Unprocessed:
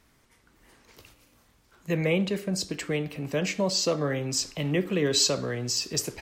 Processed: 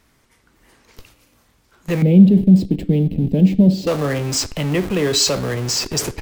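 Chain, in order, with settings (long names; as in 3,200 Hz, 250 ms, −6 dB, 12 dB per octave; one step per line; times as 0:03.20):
in parallel at −4 dB: comparator with hysteresis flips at −34 dBFS
0:02.02–0:03.87: on the sum: drawn EQ curve 100 Hz 0 dB, 190 Hz +13 dB, 770 Hz −10 dB, 1,200 Hz −27 dB, 3,500 Hz −9 dB, 6,300 Hz −22 dB, 14,000 Hz −12 dB
level +4.5 dB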